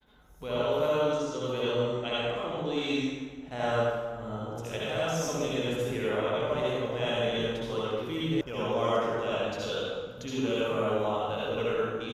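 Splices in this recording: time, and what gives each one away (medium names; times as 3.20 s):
8.41 s: sound stops dead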